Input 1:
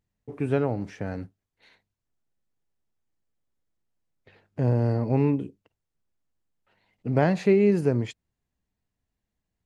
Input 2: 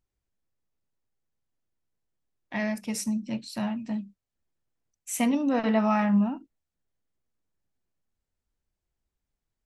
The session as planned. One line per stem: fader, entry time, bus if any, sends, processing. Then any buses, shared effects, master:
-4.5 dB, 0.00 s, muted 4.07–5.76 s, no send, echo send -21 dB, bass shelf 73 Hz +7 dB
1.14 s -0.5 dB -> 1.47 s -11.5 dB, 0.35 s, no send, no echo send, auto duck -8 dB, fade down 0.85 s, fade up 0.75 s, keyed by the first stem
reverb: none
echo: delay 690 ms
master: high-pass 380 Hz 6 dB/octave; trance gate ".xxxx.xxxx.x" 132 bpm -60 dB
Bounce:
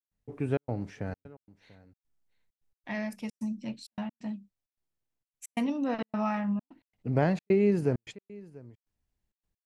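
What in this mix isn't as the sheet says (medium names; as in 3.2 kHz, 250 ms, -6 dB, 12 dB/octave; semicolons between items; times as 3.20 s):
stem 2 -0.5 dB -> +6.0 dB; master: missing high-pass 380 Hz 6 dB/octave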